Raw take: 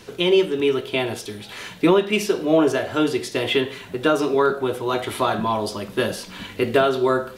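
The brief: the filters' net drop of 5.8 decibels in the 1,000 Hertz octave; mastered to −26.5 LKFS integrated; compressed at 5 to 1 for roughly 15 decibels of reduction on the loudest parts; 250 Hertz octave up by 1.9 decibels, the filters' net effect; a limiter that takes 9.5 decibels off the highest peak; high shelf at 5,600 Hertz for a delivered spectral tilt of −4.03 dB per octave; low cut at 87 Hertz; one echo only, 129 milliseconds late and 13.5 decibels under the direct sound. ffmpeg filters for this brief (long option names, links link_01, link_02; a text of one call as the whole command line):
ffmpeg -i in.wav -af "highpass=87,equalizer=frequency=250:width_type=o:gain=3.5,equalizer=frequency=1000:width_type=o:gain=-8.5,highshelf=frequency=5600:gain=5,acompressor=threshold=-29dB:ratio=5,alimiter=level_in=0.5dB:limit=-24dB:level=0:latency=1,volume=-0.5dB,aecho=1:1:129:0.211,volume=7.5dB" out.wav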